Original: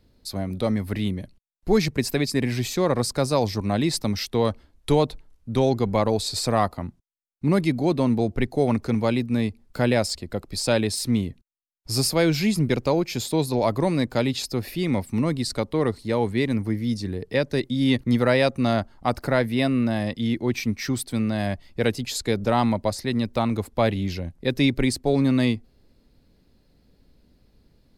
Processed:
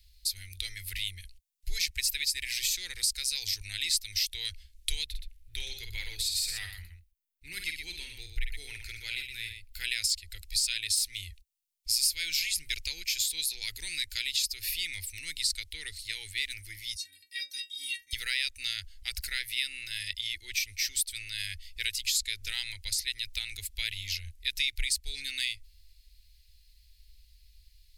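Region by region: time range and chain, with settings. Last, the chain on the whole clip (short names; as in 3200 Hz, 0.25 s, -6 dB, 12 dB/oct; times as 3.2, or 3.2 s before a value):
5.06–9.84 bell 6600 Hz -9 dB 2 oct + tapped delay 51/121 ms -6.5/-8 dB
16.95–18.13 HPF 120 Hz + high shelf 3400 Hz +11.5 dB + metallic resonator 280 Hz, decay 0.27 s, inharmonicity 0.008
whole clip: inverse Chebyshev band-stop 120–1200 Hz, stop band 40 dB; high shelf 5400 Hz +6.5 dB; compressor 2.5:1, threshold -32 dBFS; gain +4 dB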